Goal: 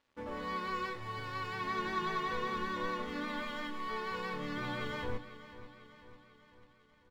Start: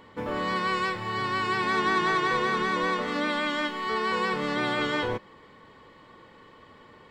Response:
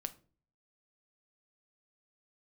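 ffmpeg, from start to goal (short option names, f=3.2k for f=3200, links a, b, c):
-filter_complex "[0:a]flanger=delay=3.3:depth=3.5:regen=-50:speed=0.36:shape=sinusoidal,aresample=16000,aresample=44100,aeval=exprs='sgn(val(0))*max(abs(val(0))-0.00251,0)':c=same,aecho=1:1:496|992|1488|1984|2480|2976:0.188|0.105|0.0591|0.0331|0.0185|0.0104[a];[1:a]atrim=start_sample=2205,asetrate=79380,aresample=44100[b];[a][b]afir=irnorm=-1:irlink=0,asubboost=boost=4:cutoff=170"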